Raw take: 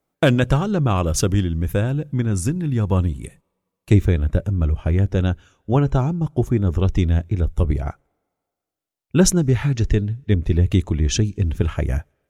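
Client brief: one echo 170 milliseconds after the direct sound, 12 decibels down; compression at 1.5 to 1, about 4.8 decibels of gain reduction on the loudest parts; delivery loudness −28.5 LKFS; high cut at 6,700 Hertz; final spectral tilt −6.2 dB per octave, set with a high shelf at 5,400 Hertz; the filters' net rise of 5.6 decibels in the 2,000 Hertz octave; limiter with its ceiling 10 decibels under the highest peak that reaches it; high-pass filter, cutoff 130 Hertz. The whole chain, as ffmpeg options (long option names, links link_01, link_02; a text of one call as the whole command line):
ffmpeg -i in.wav -af "highpass=130,lowpass=6700,equalizer=frequency=2000:width_type=o:gain=8.5,highshelf=frequency=5400:gain=-6,acompressor=threshold=-23dB:ratio=1.5,alimiter=limit=-16dB:level=0:latency=1,aecho=1:1:170:0.251,volume=-0.5dB" out.wav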